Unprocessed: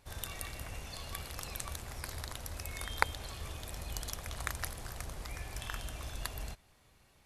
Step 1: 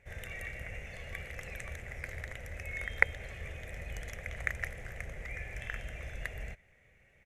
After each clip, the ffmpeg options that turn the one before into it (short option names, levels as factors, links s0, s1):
-af "firequalizer=gain_entry='entry(190,0);entry(280,-7);entry(510,5);entry(1000,-13);entry(2000,12);entry(3000,-5);entry(4400,-19);entry(6300,-8);entry(10000,-15)':delay=0.05:min_phase=1"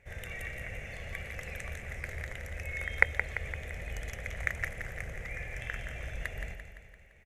-af "aecho=1:1:171|342|513|684|855|1026|1197:0.376|0.207|0.114|0.0625|0.0344|0.0189|0.0104,volume=1.19"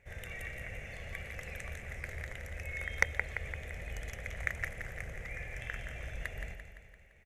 -af "volume=2.99,asoftclip=hard,volume=0.335,volume=0.75"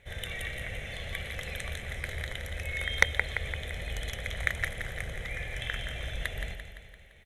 -af "superequalizer=13b=3.98:16b=1.78,volume=1.88"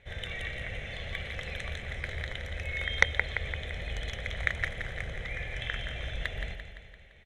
-af "lowpass=5400"